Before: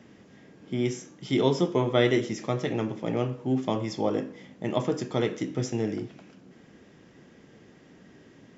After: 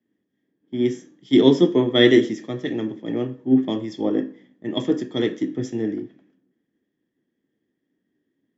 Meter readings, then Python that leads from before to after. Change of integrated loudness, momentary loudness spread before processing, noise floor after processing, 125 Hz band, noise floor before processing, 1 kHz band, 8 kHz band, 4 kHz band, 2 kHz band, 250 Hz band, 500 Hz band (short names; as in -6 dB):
+7.0 dB, 10 LU, -77 dBFS, 0.0 dB, -55 dBFS, -2.5 dB, n/a, +9.5 dB, +6.0 dB, +9.0 dB, +5.5 dB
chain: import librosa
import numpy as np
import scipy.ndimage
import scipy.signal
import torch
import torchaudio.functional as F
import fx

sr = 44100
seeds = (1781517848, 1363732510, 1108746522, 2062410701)

y = fx.small_body(x, sr, hz=(290.0, 1800.0, 3300.0), ring_ms=20, db=14)
y = fx.band_widen(y, sr, depth_pct=100)
y = y * librosa.db_to_amplitude(-5.0)